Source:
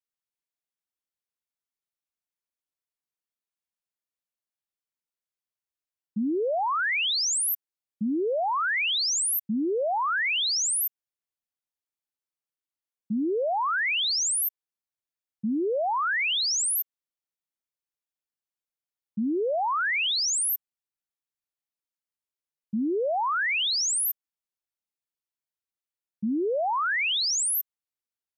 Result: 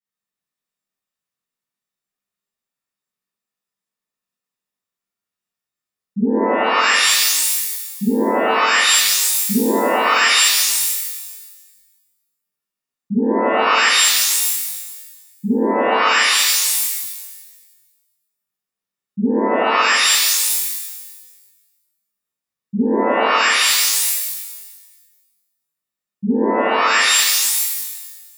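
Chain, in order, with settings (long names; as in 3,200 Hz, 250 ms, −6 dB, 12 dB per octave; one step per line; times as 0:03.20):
hollow resonant body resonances 200/1,200/1,800 Hz, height 10 dB, ringing for 20 ms
reverb with rising layers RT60 1.3 s, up +12 semitones, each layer −2 dB, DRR −10.5 dB
level −7.5 dB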